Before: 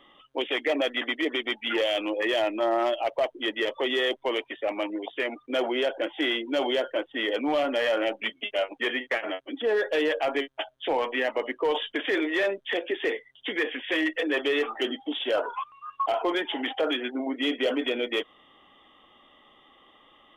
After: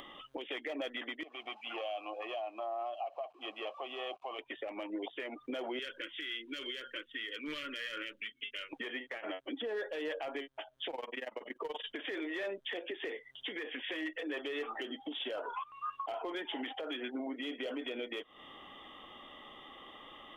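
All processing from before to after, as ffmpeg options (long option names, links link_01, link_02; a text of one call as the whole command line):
ffmpeg -i in.wav -filter_complex "[0:a]asettb=1/sr,asplit=3[link_01][link_02][link_03];[link_01]atrim=end=1.234[link_04];[link_02]atrim=start=1.23:end=4.39,asetpts=PTS-STARTPTS,afade=type=in:duration=0.004:curve=qsin,afade=type=out:start_time=3.156:duration=0.004:curve=qsin,aeval=exprs='val(0)+0.5*0.00708*sgn(val(0))':channel_layout=same,asplit=3[link_05][link_06][link_07];[link_05]bandpass=frequency=730:width_type=q:width=8,volume=0dB[link_08];[link_06]bandpass=frequency=1090:width_type=q:width=8,volume=-6dB[link_09];[link_07]bandpass=frequency=2440:width_type=q:width=8,volume=-9dB[link_10];[link_08][link_09][link_10]amix=inputs=3:normalize=0,aecho=1:1:1:0.34,atrim=end_sample=139356[link_11];[link_03]atrim=start=4.386[link_12];[link_04][link_11]acrossfade=duration=0.004:curve1=hsin:curve2=qsin[link_13];[link_13][link_12]acrossfade=duration=0.004:curve1=qsin:curve2=hsin,asettb=1/sr,asplit=3[link_14][link_15][link_16];[link_14]atrim=end=5.794[link_17];[link_15]atrim=start=5.79:end=8.73,asetpts=PTS-STARTPTS,afade=type=in:duration=0.004:curve=qsin,afade=type=out:start_time=2.936:duration=0.004:curve=qsin,asuperstop=centerf=760:order=4:qfactor=0.74,equalizer=frequency=270:width=0.64:gain=-12.5,bandreject=frequency=60:width_type=h:width=6,bandreject=frequency=120:width_type=h:width=6,bandreject=frequency=180:width_type=h:width=6,bandreject=frequency=240:width_type=h:width=6[link_18];[link_16]atrim=start=8.726[link_19];[link_17][link_18]acrossfade=duration=0.004:curve1=hsin:curve2=qsin[link_20];[link_20][link_19]acrossfade=duration=0.004:curve1=qsin:curve2=hsin,asettb=1/sr,asplit=3[link_21][link_22][link_23];[link_21]atrim=end=10.904[link_24];[link_22]atrim=start=10.9:end=11.86,asetpts=PTS-STARTPTS,afade=type=in:duration=0.004:curve=qsin,afade=type=out:start_time=0.956:duration=0.004:curve=qsin,highshelf=frequency=5800:gain=7,tremolo=f=21:d=0.919[link_25];[link_23]atrim=start=11.856[link_26];[link_24][link_25]acrossfade=duration=0.004:curve1=hsin:curve2=qsin[link_27];[link_27][link_26]acrossfade=duration=0.004:curve1=qsin:curve2=hsin,acompressor=threshold=-34dB:ratio=12,alimiter=level_in=10dB:limit=-24dB:level=0:latency=1:release=319,volume=-10dB,acompressor=mode=upward:threshold=-51dB:ratio=2.5,volume=3.5dB" out.wav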